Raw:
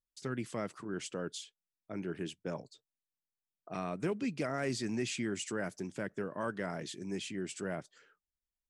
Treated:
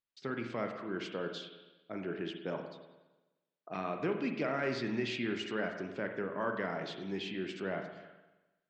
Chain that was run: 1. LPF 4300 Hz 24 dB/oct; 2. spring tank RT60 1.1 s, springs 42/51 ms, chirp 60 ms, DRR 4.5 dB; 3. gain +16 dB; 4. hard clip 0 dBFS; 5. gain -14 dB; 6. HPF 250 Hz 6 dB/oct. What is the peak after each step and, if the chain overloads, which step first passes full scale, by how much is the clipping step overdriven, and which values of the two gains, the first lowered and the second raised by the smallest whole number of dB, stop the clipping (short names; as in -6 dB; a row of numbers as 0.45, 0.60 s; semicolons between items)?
-22.5, -21.0, -5.0, -5.0, -19.0, -21.0 dBFS; no overload